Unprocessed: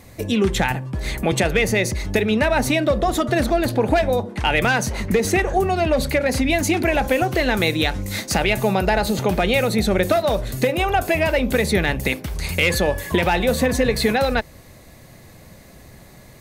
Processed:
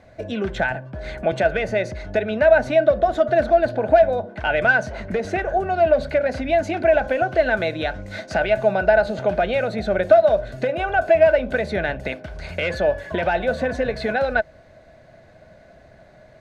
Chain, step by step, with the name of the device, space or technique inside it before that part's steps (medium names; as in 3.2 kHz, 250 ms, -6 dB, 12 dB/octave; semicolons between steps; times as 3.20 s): inside a cardboard box (low-pass 4 kHz 12 dB/octave; small resonant body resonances 640/1500 Hz, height 17 dB, ringing for 35 ms); trim -8 dB